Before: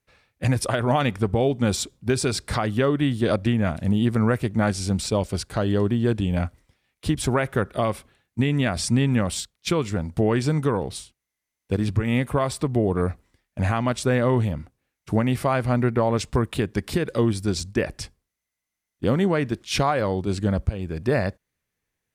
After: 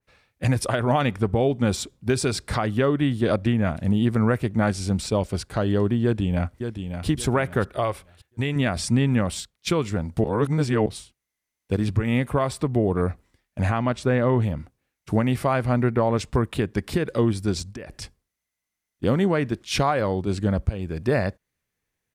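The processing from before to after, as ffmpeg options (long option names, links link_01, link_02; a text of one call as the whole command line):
ffmpeg -i in.wav -filter_complex "[0:a]asplit=2[link_01][link_02];[link_02]afade=type=in:start_time=6.03:duration=0.01,afade=type=out:start_time=7.07:duration=0.01,aecho=0:1:570|1140|1710|2280:0.398107|0.119432|0.0358296|0.0107489[link_03];[link_01][link_03]amix=inputs=2:normalize=0,asettb=1/sr,asplit=3[link_04][link_05][link_06];[link_04]atrim=end=7.744[link_07];[link_05]atrim=start=7.74:end=8.56,asetpts=PTS-STARTPTS,afade=type=in:duration=0.004:curve=qsin,afade=type=out:start_time=0.816:duration=0.004:curve=qsin,equalizer=frequency=210:width_type=o:width=0.77:gain=-12[link_08];[link_06]atrim=start=8.556[link_09];[link_07][link_08]acrossfade=duration=0.004:curve1=hsin:curve2=qsin[link_10];[link_10][link_09]acrossfade=duration=0.004:curve1=qsin:curve2=hsin,asettb=1/sr,asplit=3[link_11][link_12][link_13];[link_11]atrim=end=13.704[link_14];[link_12]atrim=start=13.7:end=14.42,asetpts=PTS-STARTPTS,afade=type=in:duration=0.004:curve=qsin,afade=type=out:start_time=0.716:duration=0.004:curve=qsin,lowpass=frequency=3500:poles=1[link_15];[link_13]atrim=start=14.416[link_16];[link_14][link_15]acrossfade=duration=0.004:curve1=hsin:curve2=qsin[link_17];[link_17][link_16]acrossfade=duration=0.004:curve1=qsin:curve2=hsin,asettb=1/sr,asplit=3[link_18][link_19][link_20];[link_18]atrim=end=17.624[link_21];[link_19]atrim=start=17.62:end=18.02,asetpts=PTS-STARTPTS,afade=type=in:duration=0.004:curve=qsin,afade=type=out:start_time=0.396:duration=0.004:curve=qsin,acompressor=threshold=-34dB:ratio=5:attack=3.2:release=140:knee=1:detection=peak[link_22];[link_20]atrim=start=18.016[link_23];[link_21][link_22]acrossfade=duration=0.004:curve1=hsin:curve2=qsin[link_24];[link_24][link_23]acrossfade=duration=0.004:curve1=qsin:curve2=hsin,asplit=3[link_25][link_26][link_27];[link_25]atrim=end=10.242[link_28];[link_26]atrim=start=10.238:end=10.862,asetpts=PTS-STARTPTS,areverse[link_29];[link_27]atrim=start=10.858[link_30];[link_28][link_29]acrossfade=duration=0.004:curve1=hsin:curve2=hsin[link_31];[link_31][link_30]acrossfade=duration=0.004:curve1=hsin:curve2=hsin,adynamicequalizer=threshold=0.00891:dfrequency=3000:dqfactor=0.7:tfrequency=3000:tqfactor=0.7:attack=5:release=100:ratio=0.375:range=2:mode=cutabove:tftype=highshelf" out.wav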